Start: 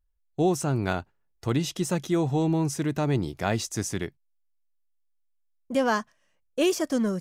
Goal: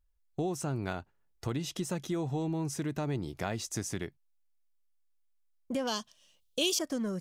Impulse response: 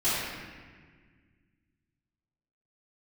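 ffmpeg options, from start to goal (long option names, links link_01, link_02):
-filter_complex "[0:a]acompressor=threshold=-33dB:ratio=3,asettb=1/sr,asplit=3[link_01][link_02][link_03];[link_01]atrim=end=5.874[link_04];[link_02]atrim=start=5.87:end=6.79,asetpts=PTS-STARTPTS,afade=type=in:duration=0.004:curve=qsin,afade=type=out:start_time=0.916:duration=0.004:curve=qsin,highshelf=frequency=2500:width_type=q:width=3:gain=9.5[link_05];[link_03]atrim=start=6.786[link_06];[link_04][link_05]acrossfade=duration=0.004:curve1=hsin:curve2=qsin[link_07];[link_07][link_06]acrossfade=duration=0.004:curve1=qsin:curve2=hsin"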